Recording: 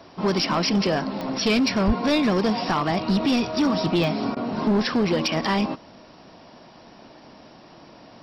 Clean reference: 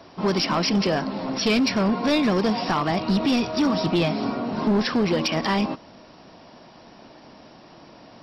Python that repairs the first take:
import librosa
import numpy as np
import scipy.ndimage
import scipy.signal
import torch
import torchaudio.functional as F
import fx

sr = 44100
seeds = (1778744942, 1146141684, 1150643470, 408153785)

y = fx.fix_declick_ar(x, sr, threshold=10.0)
y = fx.highpass(y, sr, hz=140.0, slope=24, at=(1.86, 1.98), fade=0.02)
y = fx.fix_interpolate(y, sr, at_s=(4.35,), length_ms=14.0)